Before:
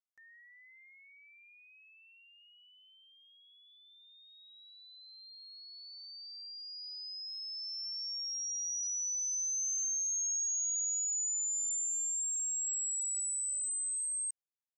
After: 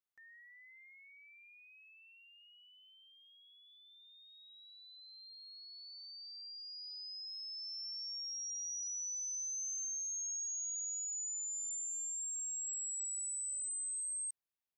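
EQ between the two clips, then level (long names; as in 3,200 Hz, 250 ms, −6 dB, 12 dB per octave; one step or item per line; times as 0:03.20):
parametric band 6,800 Hz −6.5 dB
0.0 dB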